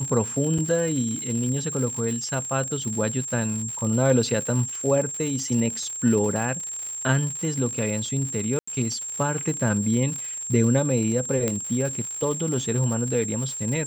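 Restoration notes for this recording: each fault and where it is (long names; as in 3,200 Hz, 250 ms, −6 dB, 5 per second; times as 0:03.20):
surface crackle 150 per second −30 dBFS
whistle 7,500 Hz −30 dBFS
0:00.58–0:00.59: drop-out 5.6 ms
0:08.59–0:08.68: drop-out 85 ms
0:11.48: click −10 dBFS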